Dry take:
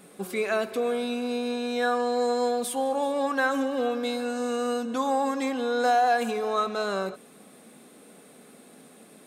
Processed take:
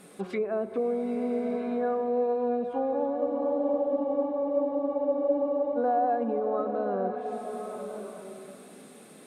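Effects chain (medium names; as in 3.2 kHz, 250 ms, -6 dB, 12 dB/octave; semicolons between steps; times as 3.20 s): low-pass that closes with the level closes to 640 Hz, closed at -25 dBFS; spectral freeze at 3.17 s, 2.59 s; swelling reverb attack 1180 ms, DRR 5.5 dB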